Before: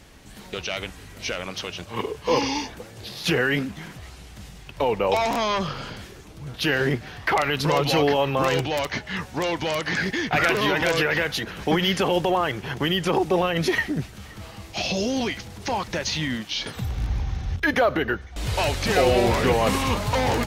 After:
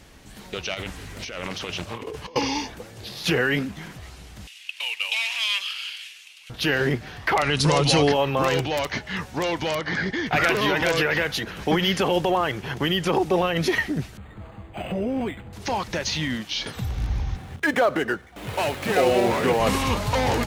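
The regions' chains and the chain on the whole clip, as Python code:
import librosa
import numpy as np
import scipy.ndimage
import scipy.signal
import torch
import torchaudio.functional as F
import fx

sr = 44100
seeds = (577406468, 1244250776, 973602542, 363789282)

y = fx.chain(x, sr, fx.over_compress(threshold_db=-34.0, ratio=-1.0),
    fx.doppler_dist(depth_ms=0.33), at=(0.74, 2.36))
y = fx.chain(y, sr, fx.cvsd(bps=64000),
    fx.highpass_res(hz=2700.0, q=4.4), at=(4.47, 6.5))
y = fx.chain(y, sr, fx.brickwall_lowpass(high_hz=11000.0),
    fx.bass_treble(bass_db=5, treble_db=9), at=(7.42, 8.12))
y = fx.chain(y, sr, fx.air_absorb(metres=110.0),
    fx.notch(hz=2600.0, q=6.4), at=(9.75, 10.26))
y = fx.chain(y, sr, fx.air_absorb(metres=370.0),
    fx.resample_linear(factor=8), at=(14.17, 15.53))
y = fx.chain(y, sr, fx.median_filter(points=9),
    fx.highpass(hz=150.0, slope=12),
    fx.high_shelf(hz=7700.0, db=3.0), at=(17.36, 19.6))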